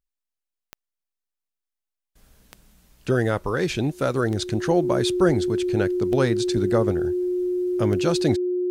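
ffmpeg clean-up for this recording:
-af "adeclick=t=4,bandreject=f=360:w=30"

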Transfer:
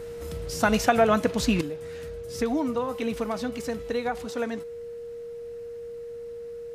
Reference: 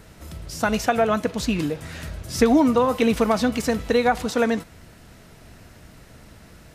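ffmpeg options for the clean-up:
-af "bandreject=f=470:w=30,asetnsamples=n=441:p=0,asendcmd='1.61 volume volume 10dB',volume=1"

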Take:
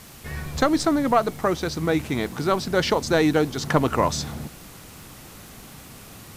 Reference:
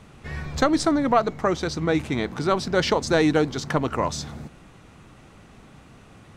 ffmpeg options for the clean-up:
-af "adeclick=t=4,afwtdn=0.005,asetnsamples=n=441:p=0,asendcmd='3.6 volume volume -3.5dB',volume=1"

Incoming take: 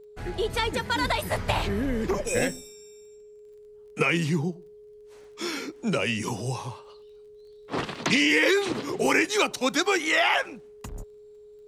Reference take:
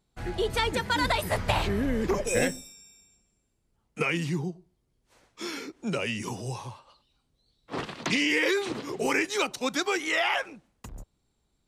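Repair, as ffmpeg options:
-af "adeclick=t=4,bandreject=f=420:w=30,asetnsamples=n=441:p=0,asendcmd='3.46 volume volume -4dB',volume=1"

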